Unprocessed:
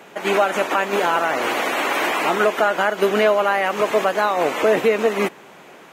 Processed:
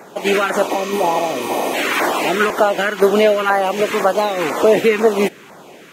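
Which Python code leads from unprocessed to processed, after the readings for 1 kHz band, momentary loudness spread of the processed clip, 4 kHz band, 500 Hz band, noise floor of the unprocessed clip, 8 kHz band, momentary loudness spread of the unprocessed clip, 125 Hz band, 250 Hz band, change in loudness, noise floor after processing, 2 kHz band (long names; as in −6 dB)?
+1.5 dB, 6 LU, +3.0 dB, +3.5 dB, −44 dBFS, +5.0 dB, 4 LU, can't be measured, +5.0 dB, +2.5 dB, −41 dBFS, +1.0 dB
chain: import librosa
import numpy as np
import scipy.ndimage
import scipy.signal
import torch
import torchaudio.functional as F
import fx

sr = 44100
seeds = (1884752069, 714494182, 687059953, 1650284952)

y = fx.filter_lfo_notch(x, sr, shape='saw_down', hz=2.0, low_hz=530.0, high_hz=3300.0, q=0.91)
y = fx.spec_repair(y, sr, seeds[0], start_s=0.74, length_s=0.97, low_hz=1000.0, high_hz=8000.0, source='before')
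y = y * librosa.db_to_amplitude(5.5)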